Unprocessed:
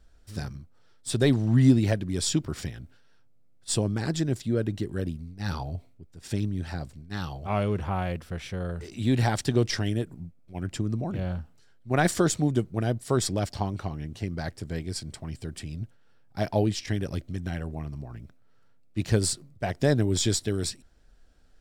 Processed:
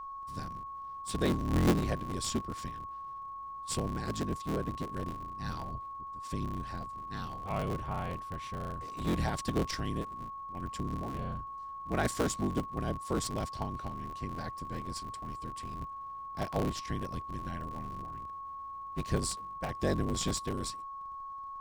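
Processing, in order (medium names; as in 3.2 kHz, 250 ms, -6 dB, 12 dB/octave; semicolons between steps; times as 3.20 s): cycle switcher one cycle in 3, inverted; whistle 1.1 kHz -32 dBFS; trim -8 dB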